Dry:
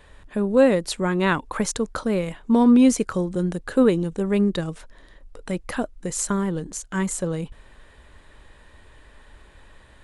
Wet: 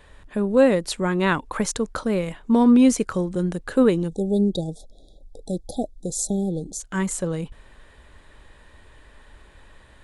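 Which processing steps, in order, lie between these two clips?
0:04.08–0:06.80: linear-phase brick-wall band-stop 840–3,300 Hz

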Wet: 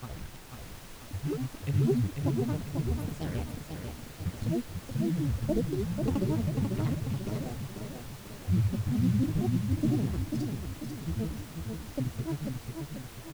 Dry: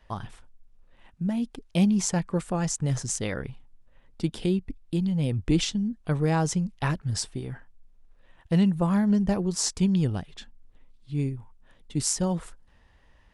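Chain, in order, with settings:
treble cut that deepens with the level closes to 460 Hz, closed at −20.5 dBFS
parametric band 1,000 Hz −11.5 dB 2.7 octaves
in parallel at −7 dB: bit-depth reduction 6 bits, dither none
on the sum: granular cloud 100 ms, grains 28 per second, pitch spread up and down by 12 semitones
background noise pink −46 dBFS
on a send: repeating echo 492 ms, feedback 46%, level −5 dB
on the sum: level −3 dB

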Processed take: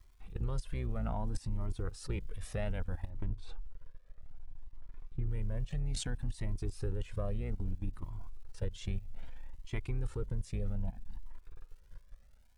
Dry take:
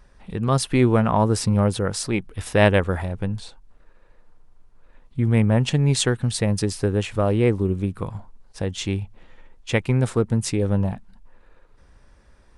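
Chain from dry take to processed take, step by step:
sub-octave generator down 2 octaves, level −4 dB
output level in coarse steps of 24 dB
transient designer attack −3 dB, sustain +7 dB
low-shelf EQ 73 Hz +11 dB
downward compressor 6 to 1, threshold −28 dBFS, peak gain reduction 12 dB
surface crackle 280 per second −55 dBFS
0:03.09–0:05.29: low-pass filter 2,700 Hz 6 dB per octave
flanger whose copies keep moving one way rising 0.62 Hz
level −1 dB

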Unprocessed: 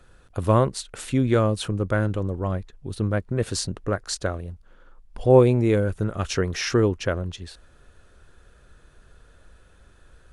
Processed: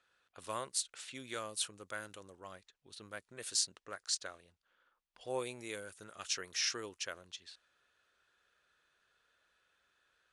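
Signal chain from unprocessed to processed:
low-pass that shuts in the quiet parts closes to 2,800 Hz, open at −18 dBFS
first difference

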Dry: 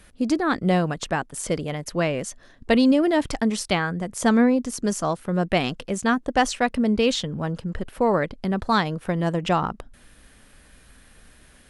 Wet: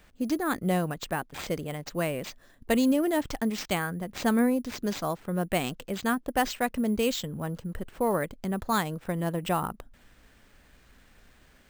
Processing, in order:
sample-rate reduction 11,000 Hz, jitter 0%
level −6 dB

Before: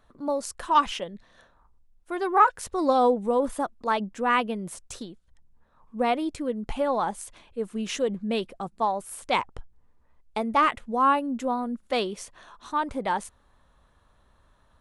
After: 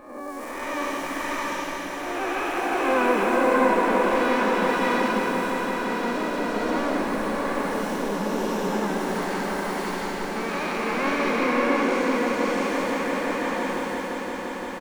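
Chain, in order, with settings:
spectrum smeared in time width 424 ms
dynamic equaliser 250 Hz, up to +4 dB, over −47 dBFS, Q 0.97
pitch-shifted copies added −3 semitones −15 dB, +5 semitones −7 dB, +12 semitones −1 dB
on a send: echo that builds up and dies away 173 ms, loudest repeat 5, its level −11 dB
on the sum: slow-attack reverb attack 690 ms, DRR −3.5 dB
level −2 dB

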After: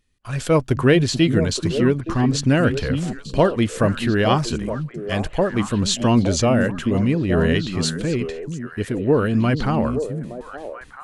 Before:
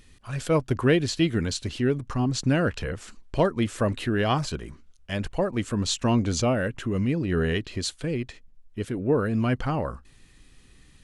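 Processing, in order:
noise gate with hold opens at −42 dBFS
on a send: echo through a band-pass that steps 434 ms, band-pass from 190 Hz, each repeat 1.4 octaves, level −3.5 dB
on the sum: level +5.5 dB

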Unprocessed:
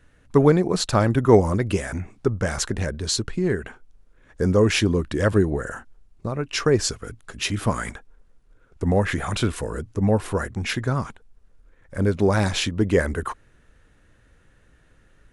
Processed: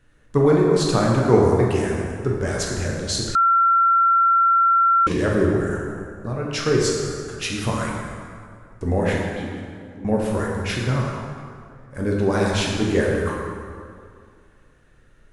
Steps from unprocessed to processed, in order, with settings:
0:09.18–0:10.05: formant filter i
dense smooth reverb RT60 2.2 s, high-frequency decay 0.65×, DRR −2.5 dB
0:03.35–0:05.07: beep over 1,360 Hz −9.5 dBFS
level −3.5 dB

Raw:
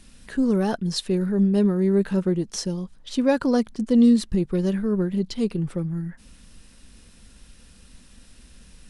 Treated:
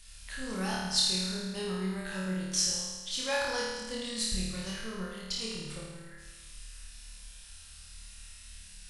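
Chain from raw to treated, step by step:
guitar amp tone stack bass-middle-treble 10-0-10
flutter between parallel walls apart 4.6 metres, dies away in 1.3 s

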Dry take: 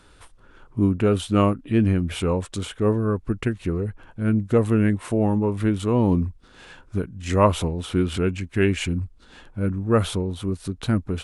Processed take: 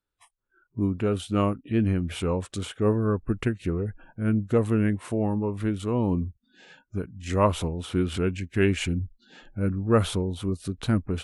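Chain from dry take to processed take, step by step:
speech leveller within 3 dB 2 s
noise reduction from a noise print of the clip's start 29 dB
level −3.5 dB

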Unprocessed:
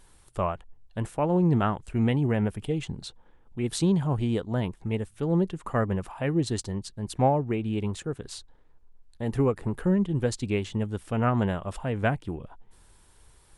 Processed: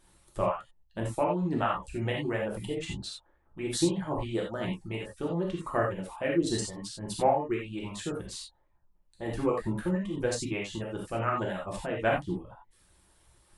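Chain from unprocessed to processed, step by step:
harmonic and percussive parts rebalanced harmonic −12 dB
reverb reduction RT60 0.66 s
reverb whose tail is shaped and stops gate 110 ms flat, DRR −3 dB
level −2.5 dB

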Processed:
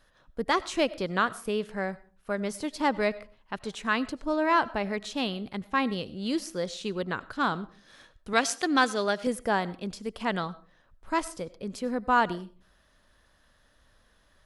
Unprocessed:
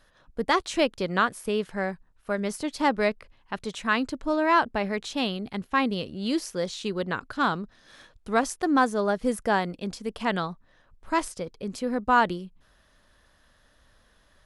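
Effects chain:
0:08.33–0:09.27: meter weighting curve D
convolution reverb RT60 0.40 s, pre-delay 55 ms, DRR 19 dB
level −2.5 dB

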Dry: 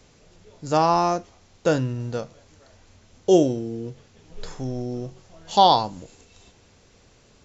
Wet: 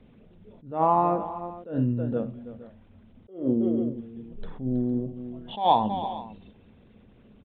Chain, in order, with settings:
spectral envelope exaggerated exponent 1.5
parametric band 220 Hz +11.5 dB 0.48 octaves
in parallel at −12 dB: soft clipping −15 dBFS, distortion −11 dB
on the sum: downsampling to 8,000 Hz
on a send: multi-tap delay 64/322/460 ms −15.5/−14.5/−18 dB
on the sum: level that may rise only so fast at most 150 dB per second
level −3.5 dB

